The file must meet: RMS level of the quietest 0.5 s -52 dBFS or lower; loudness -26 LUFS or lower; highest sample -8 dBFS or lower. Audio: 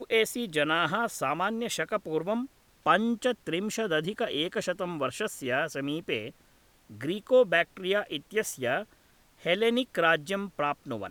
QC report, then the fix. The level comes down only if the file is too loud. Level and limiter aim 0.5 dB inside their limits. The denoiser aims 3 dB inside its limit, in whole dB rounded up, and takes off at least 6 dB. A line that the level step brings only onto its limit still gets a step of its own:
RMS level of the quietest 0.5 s -62 dBFS: pass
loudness -29.0 LUFS: pass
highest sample -9.0 dBFS: pass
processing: none needed

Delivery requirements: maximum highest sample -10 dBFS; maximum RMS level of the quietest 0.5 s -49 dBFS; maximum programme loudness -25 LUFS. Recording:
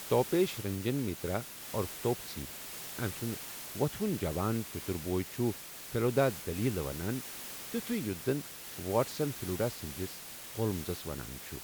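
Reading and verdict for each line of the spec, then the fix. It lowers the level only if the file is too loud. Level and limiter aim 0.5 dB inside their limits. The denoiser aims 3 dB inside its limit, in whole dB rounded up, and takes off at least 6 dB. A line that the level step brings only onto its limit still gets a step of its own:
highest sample -15.0 dBFS: pass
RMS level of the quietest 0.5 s -46 dBFS: fail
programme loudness -34.5 LUFS: pass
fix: noise reduction 6 dB, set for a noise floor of -46 dBFS

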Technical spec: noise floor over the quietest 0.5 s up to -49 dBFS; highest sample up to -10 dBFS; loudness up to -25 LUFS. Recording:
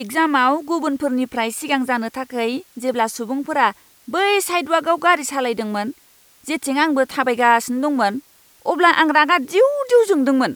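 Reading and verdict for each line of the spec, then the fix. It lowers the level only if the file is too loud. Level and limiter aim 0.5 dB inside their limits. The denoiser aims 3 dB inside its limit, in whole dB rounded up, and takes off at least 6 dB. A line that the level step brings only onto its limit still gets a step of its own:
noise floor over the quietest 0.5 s -53 dBFS: pass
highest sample -2.0 dBFS: fail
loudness -18.5 LUFS: fail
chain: trim -7 dB; peak limiter -10.5 dBFS

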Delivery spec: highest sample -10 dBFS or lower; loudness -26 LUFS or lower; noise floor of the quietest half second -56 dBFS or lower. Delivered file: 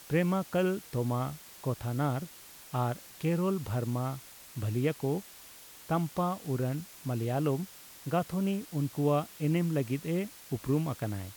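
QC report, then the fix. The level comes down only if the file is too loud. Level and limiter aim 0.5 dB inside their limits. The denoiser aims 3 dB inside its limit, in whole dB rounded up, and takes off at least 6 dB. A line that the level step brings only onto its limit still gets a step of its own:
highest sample -16.5 dBFS: pass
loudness -32.5 LUFS: pass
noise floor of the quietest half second -51 dBFS: fail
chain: noise reduction 8 dB, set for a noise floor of -51 dBFS

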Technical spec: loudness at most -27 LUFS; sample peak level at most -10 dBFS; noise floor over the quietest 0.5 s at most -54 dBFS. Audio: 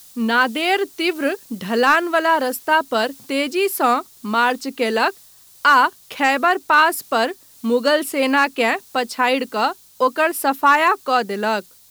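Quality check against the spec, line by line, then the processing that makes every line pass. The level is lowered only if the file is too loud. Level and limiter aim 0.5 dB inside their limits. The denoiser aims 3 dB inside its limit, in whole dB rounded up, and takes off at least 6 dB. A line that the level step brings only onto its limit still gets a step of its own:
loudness -18.5 LUFS: fail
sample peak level -5.0 dBFS: fail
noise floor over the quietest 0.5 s -48 dBFS: fail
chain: trim -9 dB

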